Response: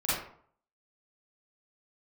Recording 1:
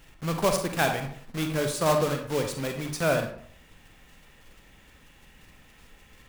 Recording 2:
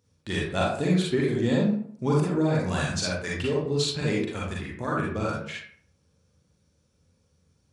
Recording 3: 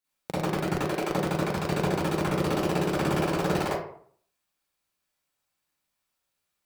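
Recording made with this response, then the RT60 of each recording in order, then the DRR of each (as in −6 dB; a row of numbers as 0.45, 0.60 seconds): 3; 0.60, 0.55, 0.55 seconds; 4.0, −5.0, −11.5 decibels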